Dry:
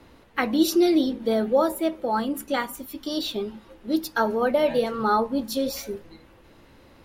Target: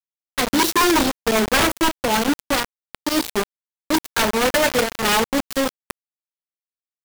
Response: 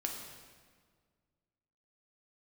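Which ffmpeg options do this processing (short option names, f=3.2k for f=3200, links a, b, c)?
-filter_complex "[0:a]asettb=1/sr,asplit=3[a][b][c];[a]atrim=end=1.314[d];[b]atrim=start=1.31:end=3.42,asetpts=PTS-STARTPTS,afade=t=in:d=0.004:c=qsin,afade=t=out:st=2.106:d=0.004:c=qsin,adynamicequalizer=threshold=0.0126:dfrequency=320:dqfactor=1.5:tfrequency=320:tqfactor=1.5:attack=5:release=100:ratio=0.375:range=2:mode=boostabove:tftype=bell[e];[c]atrim=start=3.416[f];[d][e]acrossfade=d=0.004:c1=hsin:c2=qsin[g];[g][f]acrossfade=d=0.004:c1=qsin:c2=hsin,aeval=exprs='(mod(5.31*val(0)+1,2)-1)/5.31':c=same,acrusher=bits=3:mix=0:aa=0.000001,volume=3dB"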